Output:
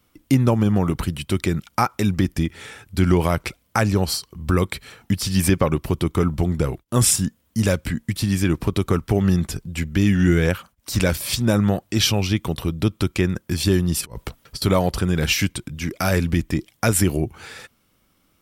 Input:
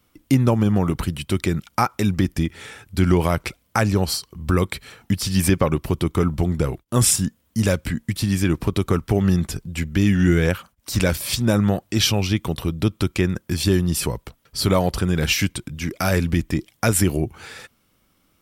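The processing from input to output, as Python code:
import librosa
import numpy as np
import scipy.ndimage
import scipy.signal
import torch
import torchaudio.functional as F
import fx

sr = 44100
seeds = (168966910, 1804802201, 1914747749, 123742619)

y = fx.over_compress(x, sr, threshold_db=-32.0, ratio=-0.5, at=(14.01, 14.62))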